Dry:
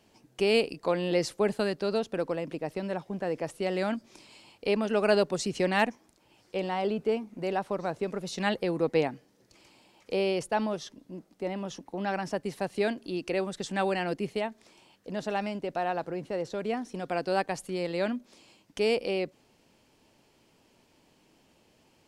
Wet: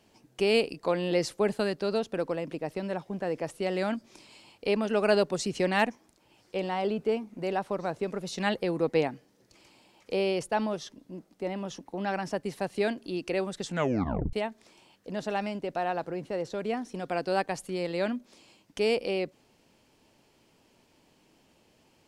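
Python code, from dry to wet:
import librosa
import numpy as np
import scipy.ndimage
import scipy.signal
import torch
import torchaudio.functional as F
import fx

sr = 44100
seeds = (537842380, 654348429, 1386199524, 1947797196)

y = fx.edit(x, sr, fx.tape_stop(start_s=13.68, length_s=0.65), tone=tone)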